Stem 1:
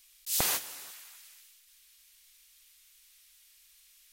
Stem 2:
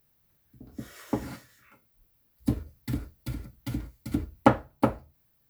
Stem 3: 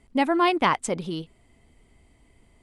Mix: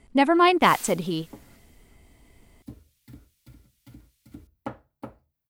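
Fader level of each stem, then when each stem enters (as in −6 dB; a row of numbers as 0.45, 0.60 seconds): −11.0, −16.0, +3.0 decibels; 0.35, 0.20, 0.00 seconds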